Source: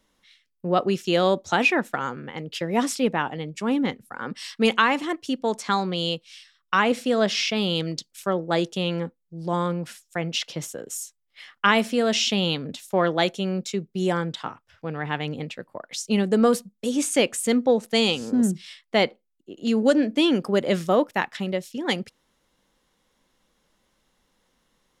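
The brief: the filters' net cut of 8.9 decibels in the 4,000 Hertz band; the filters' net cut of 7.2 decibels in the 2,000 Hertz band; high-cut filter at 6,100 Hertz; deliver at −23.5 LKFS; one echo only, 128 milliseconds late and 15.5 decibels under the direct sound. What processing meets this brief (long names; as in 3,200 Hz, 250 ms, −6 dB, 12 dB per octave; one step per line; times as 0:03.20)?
low-pass filter 6,100 Hz
parametric band 2,000 Hz −7.5 dB
parametric band 4,000 Hz −8.5 dB
single-tap delay 128 ms −15.5 dB
level +2 dB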